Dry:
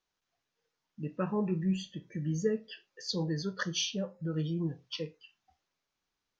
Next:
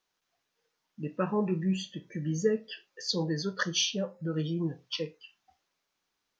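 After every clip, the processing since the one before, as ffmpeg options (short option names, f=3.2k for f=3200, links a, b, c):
-af "lowshelf=f=130:g=-10,volume=4.5dB"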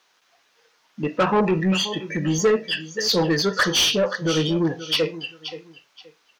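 -filter_complex "[0:a]aecho=1:1:526|1052:0.141|0.0325,asplit=2[a][b];[b]highpass=f=720:p=1,volume=22dB,asoftclip=type=tanh:threshold=-14dB[c];[a][c]amix=inputs=2:normalize=0,lowpass=f=4.3k:p=1,volume=-6dB,volume=4.5dB"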